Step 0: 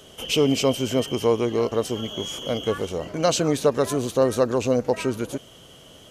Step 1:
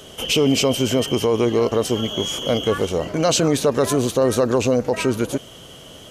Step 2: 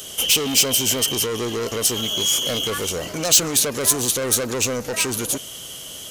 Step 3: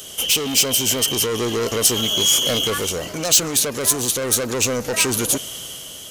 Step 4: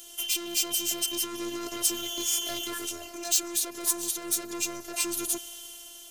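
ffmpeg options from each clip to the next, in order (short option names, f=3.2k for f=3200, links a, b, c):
-af "alimiter=limit=-15.5dB:level=0:latency=1:release=21,volume=6.5dB"
-af "asoftclip=type=tanh:threshold=-18.5dB,crystalizer=i=6:c=0,volume=-3.5dB"
-af "dynaudnorm=f=170:g=7:m=11.5dB,volume=-1dB"
-filter_complex "[0:a]acrossover=split=320[a][b];[b]crystalizer=i=0.5:c=0[c];[a][c]amix=inputs=2:normalize=0,afftfilt=real='hypot(re,im)*cos(PI*b)':imag='0':win_size=512:overlap=0.75,volume=-9dB"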